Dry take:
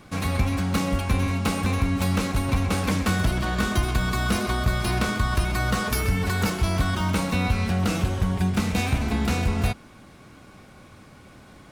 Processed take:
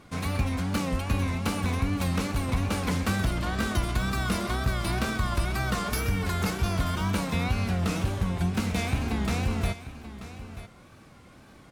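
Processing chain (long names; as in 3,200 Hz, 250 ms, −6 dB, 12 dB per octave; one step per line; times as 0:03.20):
tape wow and flutter 100 cents
single-tap delay 935 ms −14 dB
level −4 dB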